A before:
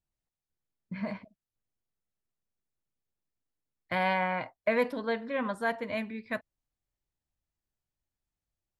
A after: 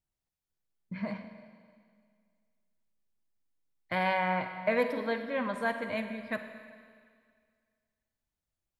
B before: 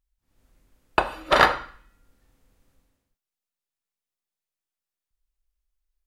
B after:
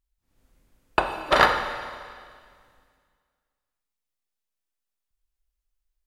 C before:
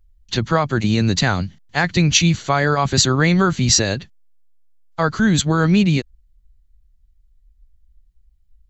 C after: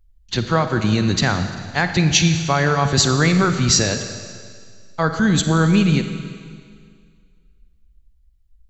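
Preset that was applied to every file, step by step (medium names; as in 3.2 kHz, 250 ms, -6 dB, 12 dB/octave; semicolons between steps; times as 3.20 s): Schroeder reverb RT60 2 s, DRR 7.5 dB; trim -1 dB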